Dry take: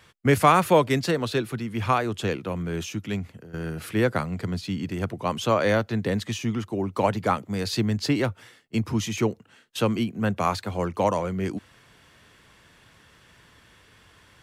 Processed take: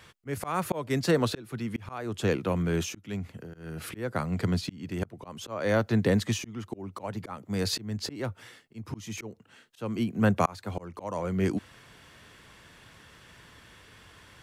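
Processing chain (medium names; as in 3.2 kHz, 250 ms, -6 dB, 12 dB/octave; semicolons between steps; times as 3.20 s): dynamic bell 3 kHz, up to -4 dB, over -41 dBFS, Q 1.1; slow attack 455 ms; trim +2 dB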